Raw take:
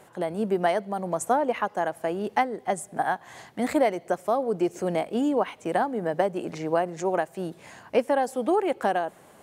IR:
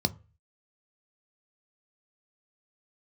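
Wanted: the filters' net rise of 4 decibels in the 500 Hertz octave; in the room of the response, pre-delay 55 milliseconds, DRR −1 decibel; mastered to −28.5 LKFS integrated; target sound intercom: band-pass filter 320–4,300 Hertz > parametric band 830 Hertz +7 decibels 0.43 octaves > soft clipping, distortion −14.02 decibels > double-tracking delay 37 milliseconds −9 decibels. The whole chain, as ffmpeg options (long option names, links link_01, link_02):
-filter_complex "[0:a]equalizer=frequency=500:width_type=o:gain=4.5,asplit=2[link_01][link_02];[1:a]atrim=start_sample=2205,adelay=55[link_03];[link_02][link_03]afir=irnorm=-1:irlink=0,volume=-6dB[link_04];[link_01][link_04]amix=inputs=2:normalize=0,highpass=320,lowpass=4300,equalizer=frequency=830:width_type=o:width=0.43:gain=7,asoftclip=threshold=-8.5dB,asplit=2[link_05][link_06];[link_06]adelay=37,volume=-9dB[link_07];[link_05][link_07]amix=inputs=2:normalize=0,volume=-10.5dB"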